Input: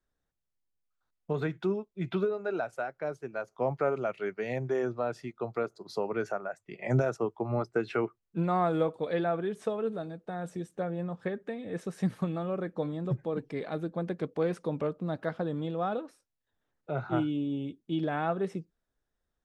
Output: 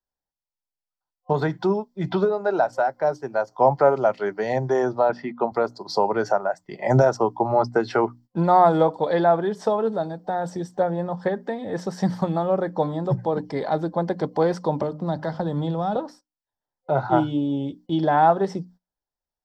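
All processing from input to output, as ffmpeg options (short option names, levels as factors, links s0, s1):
-filter_complex "[0:a]asettb=1/sr,asplit=3[s0][s1][s2];[s0]atrim=end=5.094[s3];[s1]atrim=start=5.09:end=5.52,asetpts=PTS-STARTPTS,afade=t=in:d=0.004:c=qsin,afade=t=out:st=0.426:d=0.004:c=qsin,lowpass=f=2300:t=q:w=2.1,lowshelf=f=140:t=q:w=3:g=-8.5[s4];[s2]atrim=start=5.516[s5];[s3][s4]acrossfade=d=0.004:c1=hsin:c2=qsin[s6];[s6][s5]acrossfade=d=0.004:c1=qsin:c2=hsin,asettb=1/sr,asplit=3[s7][s8][s9];[s7]atrim=end=14.824[s10];[s8]atrim=start=14.82:end=15.96,asetpts=PTS-STARTPTS,afade=t=in:d=0.004:c=qsin,afade=t=out:st=1.136:d=0.004:c=qsin,bandreject=f=76.85:t=h:w=4,bandreject=f=153.7:t=h:w=4,bandreject=f=230.55:t=h:w=4,asubboost=boost=5.5:cutoff=190,acrossover=split=350|3000[s11][s12][s13];[s12]acompressor=threshold=0.0141:ratio=6:attack=3.2:release=140:knee=2.83:detection=peak[s14];[s11][s14][s13]amix=inputs=3:normalize=0[s15];[s9]atrim=start=15.956[s16];[s10][s15]acrossfade=d=0.004:c1=hsin:c2=qsin[s17];[s17][s16]acrossfade=d=0.004:c1=qsin:c2=hsin,bandreject=f=60:t=h:w=6,bandreject=f=120:t=h:w=6,bandreject=f=180:t=h:w=6,bandreject=f=240:t=h:w=6,bandreject=f=300:t=h:w=6,agate=range=0.112:threshold=0.002:ratio=16:detection=peak,superequalizer=8b=1.78:9b=3.16:12b=0.398:14b=2.51:16b=0.355,volume=2.51"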